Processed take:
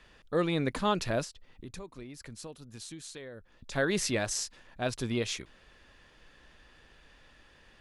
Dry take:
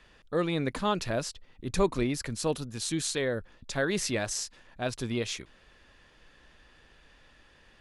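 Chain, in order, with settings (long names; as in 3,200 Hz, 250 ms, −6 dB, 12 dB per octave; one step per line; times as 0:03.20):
0:01.24–0:03.72: downward compressor 6 to 1, threshold −43 dBFS, peak gain reduction 21 dB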